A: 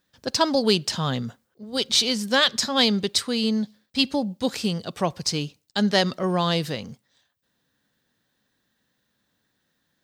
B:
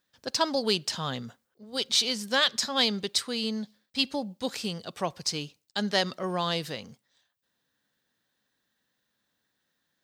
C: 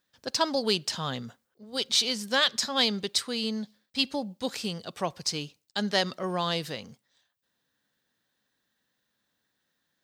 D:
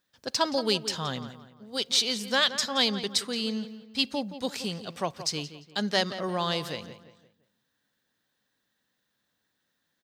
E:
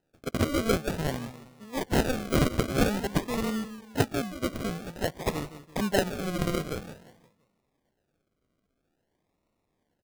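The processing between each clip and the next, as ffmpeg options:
ffmpeg -i in.wav -af "lowshelf=frequency=340:gain=-7,volume=-4dB" out.wav
ffmpeg -i in.wav -af anull out.wav
ffmpeg -i in.wav -filter_complex "[0:a]asplit=2[link_01][link_02];[link_02]adelay=173,lowpass=frequency=3300:poles=1,volume=-12dB,asplit=2[link_03][link_04];[link_04]adelay=173,lowpass=frequency=3300:poles=1,volume=0.4,asplit=2[link_05][link_06];[link_06]adelay=173,lowpass=frequency=3300:poles=1,volume=0.4,asplit=2[link_07][link_08];[link_08]adelay=173,lowpass=frequency=3300:poles=1,volume=0.4[link_09];[link_01][link_03][link_05][link_07][link_09]amix=inputs=5:normalize=0" out.wav
ffmpeg -i in.wav -af "acrusher=samples=39:mix=1:aa=0.000001:lfo=1:lforange=23.4:lforate=0.5,volume=1dB" out.wav

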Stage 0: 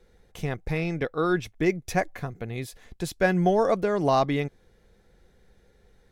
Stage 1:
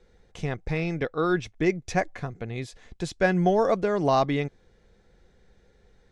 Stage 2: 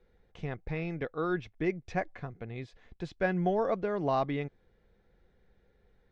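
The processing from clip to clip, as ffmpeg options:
ffmpeg -i in.wav -af "lowpass=frequency=8000:width=0.5412,lowpass=frequency=8000:width=1.3066" out.wav
ffmpeg -i in.wav -af "lowpass=3300,volume=-7dB" out.wav

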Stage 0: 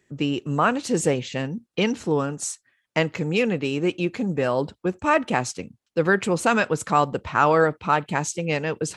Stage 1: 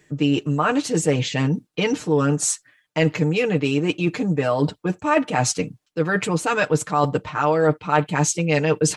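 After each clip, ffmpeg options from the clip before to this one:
ffmpeg -i in.wav -af "areverse,acompressor=threshold=-27dB:ratio=6,areverse,aecho=1:1:6.6:0.74,volume=8dB" out.wav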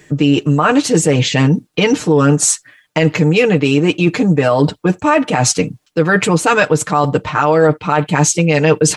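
ffmpeg -i in.wav -filter_complex "[0:a]asplit=2[link_01][link_02];[link_02]acompressor=threshold=-28dB:ratio=6,volume=-2dB[link_03];[link_01][link_03]amix=inputs=2:normalize=0,alimiter=level_in=8dB:limit=-1dB:release=50:level=0:latency=1,volume=-1dB" out.wav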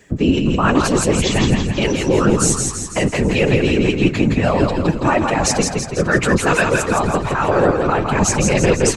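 ffmpeg -i in.wav -filter_complex "[0:a]afftfilt=real='hypot(re,im)*cos(2*PI*random(0))':imag='hypot(re,im)*sin(2*PI*random(1))':win_size=512:overlap=0.75,asplit=2[link_01][link_02];[link_02]asplit=7[link_03][link_04][link_05][link_06][link_07][link_08][link_09];[link_03]adelay=165,afreqshift=-38,volume=-4dB[link_10];[link_04]adelay=330,afreqshift=-76,volume=-9.4dB[link_11];[link_05]adelay=495,afreqshift=-114,volume=-14.7dB[link_12];[link_06]adelay=660,afreqshift=-152,volume=-20.1dB[link_13];[link_07]adelay=825,afreqshift=-190,volume=-25.4dB[link_14];[link_08]adelay=990,afreqshift=-228,volume=-30.8dB[link_15];[link_09]adelay=1155,afreqshift=-266,volume=-36.1dB[link_16];[link_10][link_11][link_12][link_13][link_14][link_15][link_16]amix=inputs=7:normalize=0[link_17];[link_01][link_17]amix=inputs=2:normalize=0,volume=1.5dB" out.wav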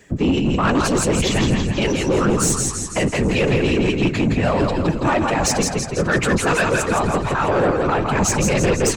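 ffmpeg -i in.wav -af "asoftclip=type=tanh:threshold=-11dB" out.wav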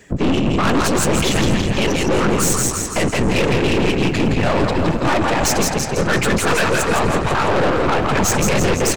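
ffmpeg -i in.wav -filter_complex "[0:a]aeval=exprs='(tanh(11.2*val(0)+0.7)-tanh(0.7))/11.2':channel_layout=same,asplit=2[link_01][link_02];[link_02]adelay=360,highpass=300,lowpass=3400,asoftclip=type=hard:threshold=-25dB,volume=-7dB[link_03];[link_01][link_03]amix=inputs=2:normalize=0,volume=7dB" out.wav

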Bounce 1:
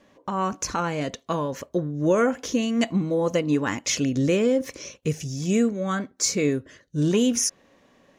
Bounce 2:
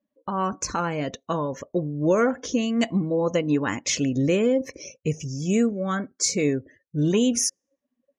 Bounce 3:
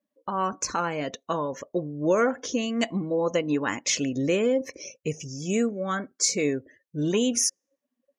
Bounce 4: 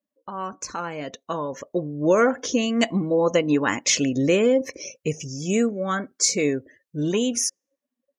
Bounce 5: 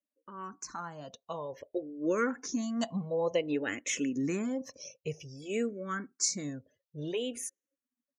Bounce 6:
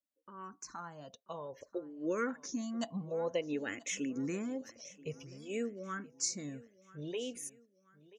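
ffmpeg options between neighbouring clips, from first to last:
ffmpeg -i in.wav -af "afftdn=noise_reduction=32:noise_floor=-42" out.wav
ffmpeg -i in.wav -af "lowshelf=frequency=180:gain=-11.5" out.wav
ffmpeg -i in.wav -af "dynaudnorm=framelen=640:gausssize=5:maxgain=11.5dB,volume=-4.5dB" out.wav
ffmpeg -i in.wav -filter_complex "[0:a]asplit=2[link_01][link_02];[link_02]afreqshift=-0.54[link_03];[link_01][link_03]amix=inputs=2:normalize=1,volume=-8.5dB" out.wav
ffmpeg -i in.wav -af "aecho=1:1:984|1968|2952:0.0944|0.0425|0.0191,volume=-5dB" out.wav

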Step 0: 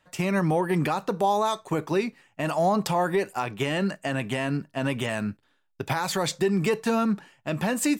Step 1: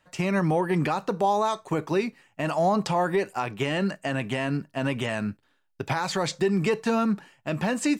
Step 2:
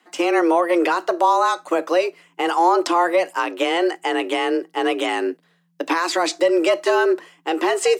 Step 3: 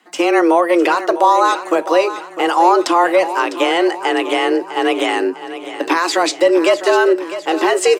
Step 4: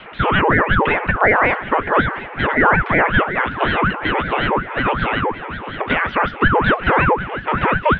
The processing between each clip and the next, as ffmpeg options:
ffmpeg -i in.wav -filter_complex "[0:a]bandreject=frequency=3500:width=26,acrossover=split=8200[link_01][link_02];[link_02]acompressor=threshold=-59dB:ratio=4:attack=1:release=60[link_03];[link_01][link_03]amix=inputs=2:normalize=0" out.wav
ffmpeg -i in.wav -af "afreqshift=170,volume=6.5dB" out.wav
ffmpeg -i in.wav -af "aecho=1:1:653|1306|1959|2612|3265:0.237|0.116|0.0569|0.0279|0.0137,volume=4.5dB" out.wav
ffmpeg -i in.wav -af "aeval=exprs='val(0)+0.5*0.0398*sgn(val(0))':channel_layout=same,highpass=frequency=180:width_type=q:width=0.5412,highpass=frequency=180:width_type=q:width=1.307,lowpass=frequency=2300:width_type=q:width=0.5176,lowpass=frequency=2300:width_type=q:width=0.7071,lowpass=frequency=2300:width_type=q:width=1.932,afreqshift=300,aeval=exprs='val(0)*sin(2*PI*510*n/s+510*0.7/5.4*sin(2*PI*5.4*n/s))':channel_layout=same" out.wav

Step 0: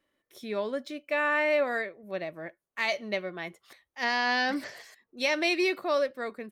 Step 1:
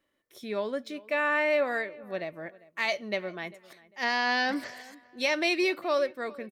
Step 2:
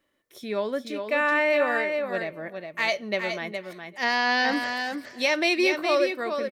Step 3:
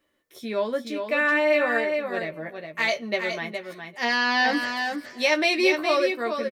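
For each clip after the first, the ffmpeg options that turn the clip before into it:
ffmpeg -i in.wav -filter_complex "[0:a]asplit=2[link_01][link_02];[link_02]adelay=398,lowpass=frequency=2400:poles=1,volume=-21dB,asplit=2[link_03][link_04];[link_04]adelay=398,lowpass=frequency=2400:poles=1,volume=0.3[link_05];[link_01][link_03][link_05]amix=inputs=3:normalize=0" out.wav
ffmpeg -i in.wav -af "aecho=1:1:415:0.473,volume=3.5dB" out.wav
ffmpeg -i in.wav -filter_complex "[0:a]asplit=2[link_01][link_02];[link_02]adelay=13,volume=-4.5dB[link_03];[link_01][link_03]amix=inputs=2:normalize=0" out.wav

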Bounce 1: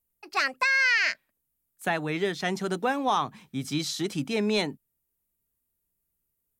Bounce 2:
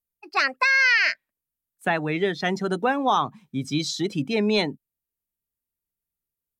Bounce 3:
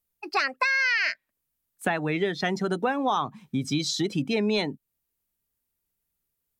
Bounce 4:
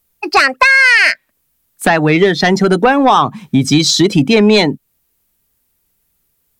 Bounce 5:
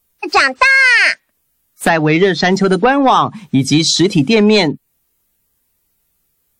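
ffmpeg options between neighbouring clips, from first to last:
ffmpeg -i in.wav -af "afftdn=noise_reduction=13:noise_floor=-39,volume=4dB" out.wav
ffmpeg -i in.wav -af "acompressor=threshold=-34dB:ratio=2.5,volume=7dB" out.wav
ffmpeg -i in.wav -af "aeval=exprs='0.355*sin(PI/2*2*val(0)/0.355)':channel_layout=same,volume=7dB" out.wav
ffmpeg -i in.wav -af "volume=-1dB" -ar 44100 -c:a wmav2 -b:a 64k out.wma

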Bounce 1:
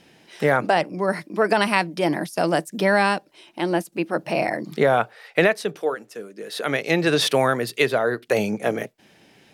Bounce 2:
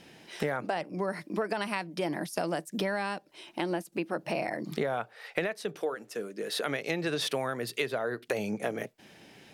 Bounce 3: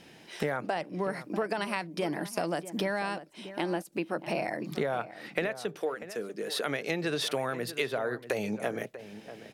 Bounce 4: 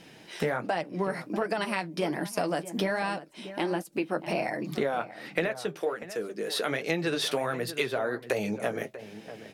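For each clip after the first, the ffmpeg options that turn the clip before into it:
ffmpeg -i in.wav -af "acompressor=threshold=-29dB:ratio=5" out.wav
ffmpeg -i in.wav -filter_complex "[0:a]asplit=2[link_01][link_02];[link_02]adelay=641.4,volume=-13dB,highshelf=frequency=4000:gain=-14.4[link_03];[link_01][link_03]amix=inputs=2:normalize=0" out.wav
ffmpeg -i in.wav -af "flanger=delay=6.1:depth=6:regen=-44:speed=1.3:shape=sinusoidal,volume=6dB" out.wav

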